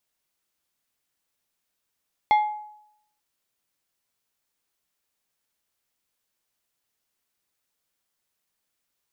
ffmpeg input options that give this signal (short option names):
-f lavfi -i "aevalsrc='0.224*pow(10,-3*t/0.76)*sin(2*PI*845*t)+0.0708*pow(10,-3*t/0.4)*sin(2*PI*2112.5*t)+0.0224*pow(10,-3*t/0.288)*sin(2*PI*3380*t)+0.00708*pow(10,-3*t/0.246)*sin(2*PI*4225*t)+0.00224*pow(10,-3*t/0.205)*sin(2*PI*5492.5*t)':d=0.89:s=44100"